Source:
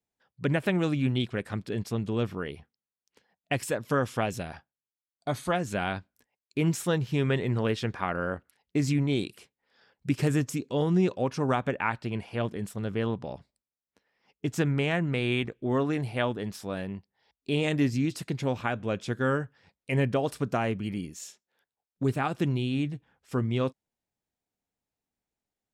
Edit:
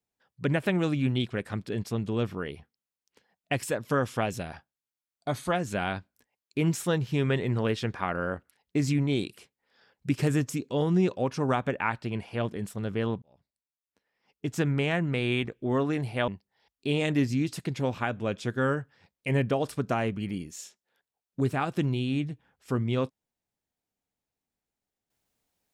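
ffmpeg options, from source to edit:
-filter_complex "[0:a]asplit=3[s0][s1][s2];[s0]atrim=end=13.22,asetpts=PTS-STARTPTS,afade=t=out:st=13.216:d=0.004:c=hsin[s3];[s1]atrim=start=13.22:end=16.282,asetpts=PTS-STARTPTS,afade=t=in:d=1.49[s4];[s2]atrim=start=16.908[s5];[s3][s4]concat=n=2:v=0:a=1[s6];[s6][s5]acrossfade=d=0.004:c1=hsin:c2=hsin"

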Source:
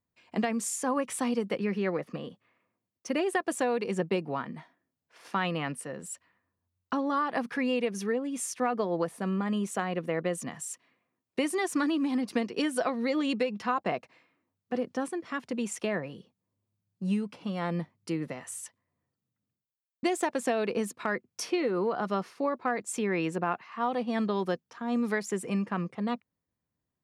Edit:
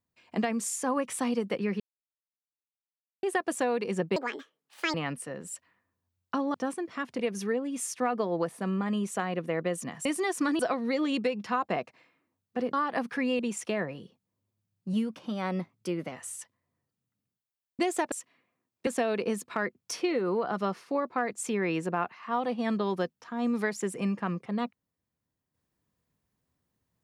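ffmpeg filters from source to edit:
-filter_complex "[0:a]asplit=15[s0][s1][s2][s3][s4][s5][s6][s7][s8][s9][s10][s11][s12][s13][s14];[s0]atrim=end=1.8,asetpts=PTS-STARTPTS,afade=t=out:st=1.796:d=0.004:c=hsin[s15];[s1]atrim=start=1.8:end=3.23,asetpts=PTS-STARTPTS,volume=0[s16];[s2]atrim=start=3.23:end=4.164,asetpts=PTS-STARTPTS,afade=t=in:d=0.004:c=hsin[s17];[s3]atrim=start=4.16:end=5.53,asetpts=PTS-STARTPTS,asetrate=77175,aresample=44100[s18];[s4]atrim=start=5.526:end=7.132[s19];[s5]atrim=start=14.888:end=15.542[s20];[s6]atrim=start=7.788:end=10.652[s21];[s7]atrim=start=11.398:end=11.942[s22];[s8]atrim=start=12.748:end=14.892[s23];[s9]atrim=start=7.128:end=7.792[s24];[s10]atrim=start=15.538:end=17.084[s25];[s11]atrim=start=17.08:end=18.36,asetpts=PTS-STARTPTS,asetrate=47628,aresample=44100[s26];[s12]atrim=start=18.356:end=20.362[s27];[s13]atrim=start=10.648:end=11.402[s28];[s14]atrim=start=20.358[s29];[s15][s16][s17]concat=n=3:v=0:a=1[s30];[s30][s18]acrossfade=d=0.004:c1=hsin:c2=hsin[s31];[s31][s19]acrossfade=d=0.004:c1=hsin:c2=hsin[s32];[s32][s20]acrossfade=d=0.004:c1=hsin:c2=hsin[s33];[s33][s21]acrossfade=d=0.004:c1=hsin:c2=hsin[s34];[s34][s22]acrossfade=d=0.004:c1=hsin:c2=hsin[s35];[s35][s23]acrossfade=d=0.004:c1=hsin:c2=hsin[s36];[s36][s24]acrossfade=d=0.004:c1=hsin:c2=hsin[s37];[s37][s25]acrossfade=d=0.004:c1=hsin:c2=hsin[s38];[s38][s26]acrossfade=d=0.004:c1=hsin:c2=hsin[s39];[s39][s27]acrossfade=d=0.004:c1=hsin:c2=hsin[s40];[s40][s28]acrossfade=d=0.004:c1=hsin:c2=hsin[s41];[s41][s29]acrossfade=d=0.004:c1=hsin:c2=hsin"

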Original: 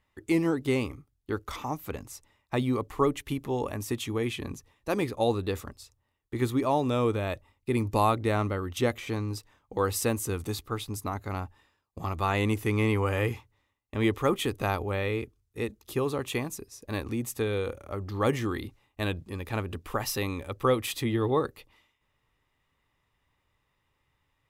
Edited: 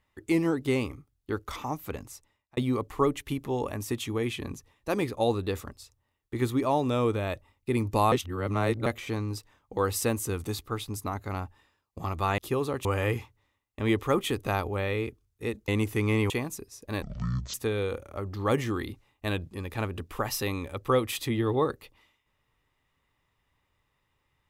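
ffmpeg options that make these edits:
-filter_complex "[0:a]asplit=10[s0][s1][s2][s3][s4][s5][s6][s7][s8][s9];[s0]atrim=end=2.57,asetpts=PTS-STARTPTS,afade=t=out:st=2.04:d=0.53[s10];[s1]atrim=start=2.57:end=8.122,asetpts=PTS-STARTPTS,afade=t=in:d=0.004:c=hsin[s11];[s2]atrim=start=8.118:end=8.862,asetpts=PTS-STARTPTS,areverse[s12];[s3]atrim=start=8.858:end=12.382[s13];[s4]atrim=start=15.828:end=16.302[s14];[s5]atrim=start=12.998:end=15.832[s15];[s6]atrim=start=12.378:end=13.002[s16];[s7]atrim=start=16.298:end=17.024[s17];[s8]atrim=start=17.02:end=17.29,asetpts=PTS-STARTPTS,asetrate=22932,aresample=44100,atrim=end_sample=22898,asetpts=PTS-STARTPTS[s18];[s9]atrim=start=17.286[s19];[s10][s11]concat=n=2:v=0:a=1[s20];[s20][s12]acrossfade=d=0.004:c1=hsin:c2=hsin[s21];[s21][s13]acrossfade=d=0.004:c1=hsin:c2=hsin[s22];[s22][s14]acrossfade=d=0.004:c1=hsin:c2=hsin[s23];[s23][s15]acrossfade=d=0.004:c1=hsin:c2=hsin[s24];[s24][s16]acrossfade=d=0.004:c1=hsin:c2=hsin[s25];[s25][s17]acrossfade=d=0.004:c1=hsin:c2=hsin[s26];[s26][s18]acrossfade=d=0.004:c1=hsin:c2=hsin[s27];[s27][s19]acrossfade=d=0.004:c1=hsin:c2=hsin"

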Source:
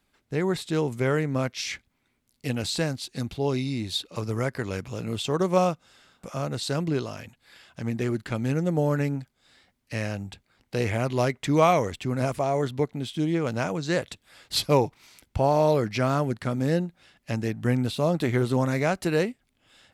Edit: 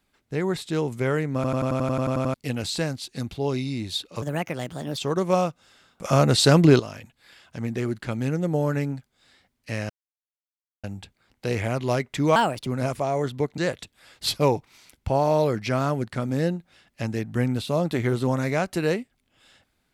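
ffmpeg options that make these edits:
-filter_complex "[0:a]asplit=20[s0][s1][s2][s3][s4][s5][s6][s7][s8][s9][s10][s11][s12][s13][s14][s15][s16][s17][s18][s19];[s0]atrim=end=1.442[s20];[s1]atrim=start=1.348:end=1.442[s21];[s2]atrim=start=1.348:end=1.442[s22];[s3]atrim=start=1.348:end=1.442[s23];[s4]atrim=start=1.348:end=1.442[s24];[s5]atrim=start=1.348:end=1.442[s25];[s6]atrim=start=1.348:end=1.442[s26];[s7]atrim=start=1.348:end=1.442[s27];[s8]atrim=start=1.348:end=1.442[s28];[s9]atrim=start=1.348:end=1.442[s29];[s10]atrim=start=1.348:end=1.442[s30];[s11]atrim=start=2.338:end=4.224[s31];[s12]atrim=start=4.22:end=5.21,asetpts=PTS-STARTPTS,asetrate=57771,aresample=44100,atrim=end_sample=33327,asetpts=PTS-STARTPTS[s32];[s13]atrim=start=5.206:end=6.282[s33];[s14]atrim=start=6.278:end=7.032,asetpts=PTS-STARTPTS,volume=3.76[s34];[s15]atrim=start=7.028:end=10.13,asetpts=PTS-STARTPTS,afade=t=out:st=3.098:d=0.004:c=hsin,apad=pad_dur=0.94[s35];[s16]atrim=start=10.13:end=11.654,asetpts=PTS-STARTPTS,afade=t=in:d=0.004:c=hsin[s36];[s17]atrim=start=11.65:end=12.06,asetpts=PTS-STARTPTS,asetrate=57771,aresample=44100,atrim=end_sample=13802,asetpts=PTS-STARTPTS[s37];[s18]atrim=start=12.056:end=12.972[s38];[s19]atrim=start=13.868[s39];[s20][s21]acrossfade=d=0.004:c1=hsin:c2=hsin[s40];[s40][s22]acrossfade=d=0.004:c1=hsin:c2=hsin[s41];[s41][s23]acrossfade=d=0.004:c1=hsin:c2=hsin[s42];[s42][s24]acrossfade=d=0.004:c1=hsin:c2=hsin[s43];[s43][s25]acrossfade=d=0.004:c1=hsin:c2=hsin[s44];[s44][s26]acrossfade=d=0.004:c1=hsin:c2=hsin[s45];[s45][s27]acrossfade=d=0.004:c1=hsin:c2=hsin[s46];[s46][s28]acrossfade=d=0.004:c1=hsin:c2=hsin[s47];[s47][s29]acrossfade=d=0.004:c1=hsin:c2=hsin[s48];[s48][s30]acrossfade=d=0.004:c1=hsin:c2=hsin[s49];[s49][s31]acrossfade=d=0.004:c1=hsin:c2=hsin[s50];[s50][s32]acrossfade=d=0.004:c1=hsin:c2=hsin[s51];[s51][s33]acrossfade=d=0.004:c1=hsin:c2=hsin[s52];[s52][s34]acrossfade=d=0.004:c1=hsin:c2=hsin[s53];[s35][s36]concat=n=2:v=0:a=1[s54];[s53][s54]acrossfade=d=0.004:c1=hsin:c2=hsin[s55];[s55][s37]acrossfade=d=0.004:c1=hsin:c2=hsin[s56];[s56][s38]acrossfade=d=0.004:c1=hsin:c2=hsin[s57];[s57][s39]acrossfade=d=0.004:c1=hsin:c2=hsin"

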